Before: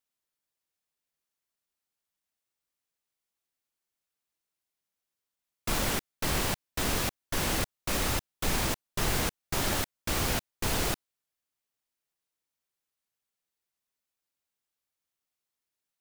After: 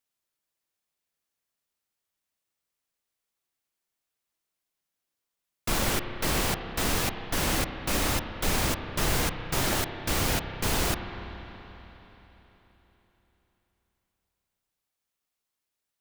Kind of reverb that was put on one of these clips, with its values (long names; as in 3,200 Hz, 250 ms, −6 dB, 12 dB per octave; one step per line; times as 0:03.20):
spring reverb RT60 3.9 s, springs 31/48 ms, chirp 65 ms, DRR 7 dB
level +2 dB